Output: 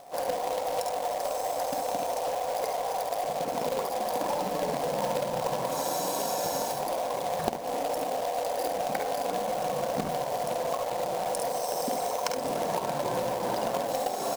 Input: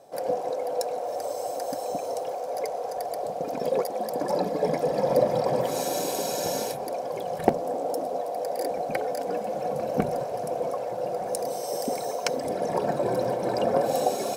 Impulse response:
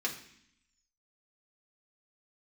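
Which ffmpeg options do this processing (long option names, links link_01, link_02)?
-filter_complex "[0:a]equalizer=frequency=100:width_type=o:width=0.67:gain=-4,equalizer=frequency=400:width_type=o:width=0.67:gain=-5,equalizer=frequency=1000:width_type=o:width=0.67:gain=8,equalizer=frequency=2500:width_type=o:width=0.67:gain=-5,aeval=exprs='val(0)+0.00316*sin(2*PI*710*n/s)':channel_layout=same,asplit=2[link_01][link_02];[link_02]aecho=0:1:49|70:0.422|0.447[link_03];[link_01][link_03]amix=inputs=2:normalize=0,acompressor=threshold=-26dB:ratio=10,acrusher=bits=2:mode=log:mix=0:aa=0.000001"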